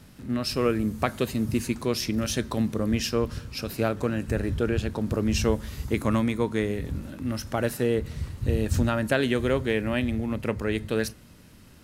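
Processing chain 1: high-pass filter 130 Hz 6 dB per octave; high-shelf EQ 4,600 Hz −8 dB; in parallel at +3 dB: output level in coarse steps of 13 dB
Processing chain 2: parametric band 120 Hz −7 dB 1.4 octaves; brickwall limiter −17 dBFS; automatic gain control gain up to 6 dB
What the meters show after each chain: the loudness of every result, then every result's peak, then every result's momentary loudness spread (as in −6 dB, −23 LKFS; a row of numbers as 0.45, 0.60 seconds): −23.0, −24.5 LKFS; −2.0, −11.0 dBFS; 8, 7 LU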